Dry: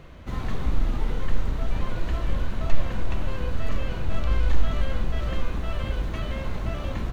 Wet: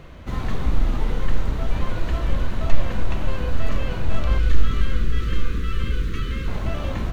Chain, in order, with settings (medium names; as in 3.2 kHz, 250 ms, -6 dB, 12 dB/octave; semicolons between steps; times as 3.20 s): 4.38–6.48 s: Chebyshev band-stop 470–1200 Hz, order 3; echo that smears into a reverb 503 ms, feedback 41%, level -13 dB; trim +3.5 dB